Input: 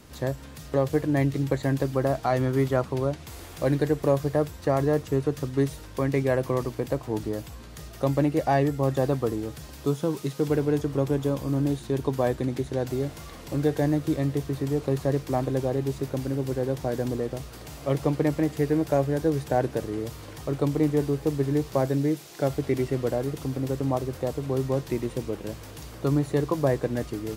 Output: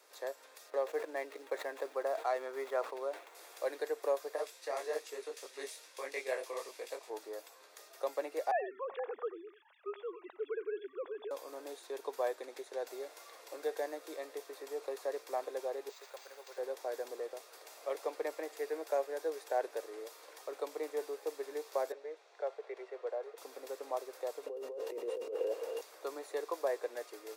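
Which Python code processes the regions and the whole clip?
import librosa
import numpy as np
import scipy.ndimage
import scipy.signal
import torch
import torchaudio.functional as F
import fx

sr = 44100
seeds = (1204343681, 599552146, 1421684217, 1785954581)

y = fx.chain(x, sr, fx.median_filter(points=9),
    fx.sustainer(db_per_s=95.0), at=(0.7, 3.35))
y = fx.chain(y, sr, fx.band_shelf(hz=4700.0, db=8.5, octaves=2.8),
    fx.detune_double(cents=57), at=(4.36, 7.1))
y = fx.chain(y, sr, fx.sine_speech(),
    fx.peak_eq(hz=470.0, db=-5.5, octaves=0.83),
    fx.echo_single(ms=91, db=-15.0), at=(8.51, 11.31))
y = fx.chain(y, sr, fx.highpass(hz=780.0, slope=12),
    fx.high_shelf(hz=4600.0, db=8.0),
    fx.resample_bad(factor=4, down='filtered', up='hold'), at=(15.89, 16.58))
y = fx.chain(y, sr, fx.steep_highpass(hz=390.0, slope=36),
    fx.spacing_loss(db_at_10k=26),
    fx.notch(hz=5000.0, q=20.0), at=(21.92, 23.38))
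y = fx.chain(y, sr, fx.small_body(hz=(480.0, 2800.0), ring_ms=35, db=15),
    fx.over_compress(threshold_db=-29.0, ratio=-1.0),
    fx.tilt_shelf(db=6.5, hz=840.0), at=(24.46, 25.81))
y = scipy.signal.sosfilt(scipy.signal.butter(6, 430.0, 'highpass', fs=sr, output='sos'), y)
y = fx.notch(y, sr, hz=3000.0, q=9.7)
y = y * librosa.db_to_amplitude(-8.5)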